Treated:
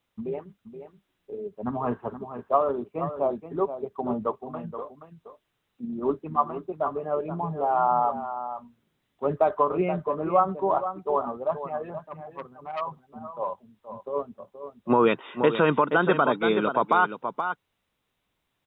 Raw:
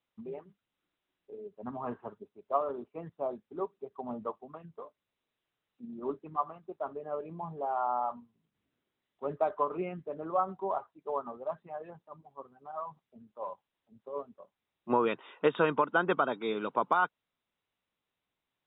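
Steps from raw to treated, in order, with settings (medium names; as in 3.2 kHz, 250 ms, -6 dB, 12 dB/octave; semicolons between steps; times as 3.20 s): bass shelf 140 Hz +7.5 dB; on a send: delay 475 ms -10.5 dB; on the sum: loudness maximiser +17 dB; 12.06–12.81 s: transformer saturation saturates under 1.2 kHz; trim -8.5 dB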